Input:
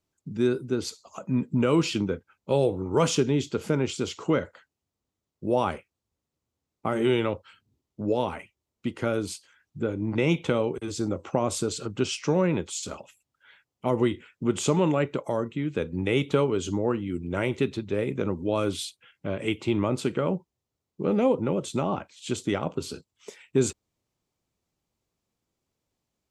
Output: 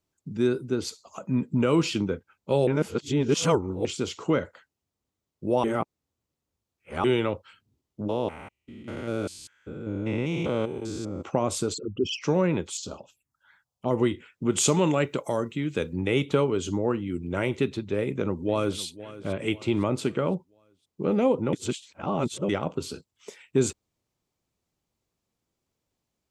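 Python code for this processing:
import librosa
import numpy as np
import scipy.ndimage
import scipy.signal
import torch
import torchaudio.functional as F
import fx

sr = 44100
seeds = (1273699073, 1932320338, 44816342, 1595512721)

y = fx.spec_steps(x, sr, hold_ms=200, at=(8.07, 11.21), fade=0.02)
y = fx.envelope_sharpen(y, sr, power=3.0, at=(11.73, 12.21), fade=0.02)
y = fx.env_phaser(y, sr, low_hz=260.0, high_hz=2000.0, full_db=-41.0, at=(12.77, 13.91))
y = fx.high_shelf(y, sr, hz=3600.0, db=10.5, at=(14.52, 15.93))
y = fx.echo_throw(y, sr, start_s=17.97, length_s=0.84, ms=510, feedback_pct=45, wet_db=-16.5)
y = fx.edit(y, sr, fx.reverse_span(start_s=2.67, length_s=1.18),
    fx.reverse_span(start_s=5.64, length_s=1.4),
    fx.reverse_span(start_s=21.53, length_s=0.96), tone=tone)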